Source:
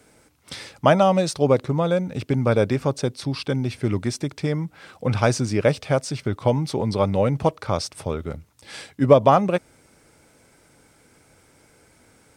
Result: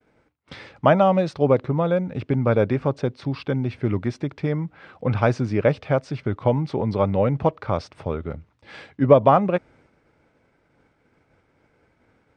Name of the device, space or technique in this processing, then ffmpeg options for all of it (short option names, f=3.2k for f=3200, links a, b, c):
hearing-loss simulation: -af "lowpass=2.5k,agate=range=-33dB:threshold=-51dB:ratio=3:detection=peak"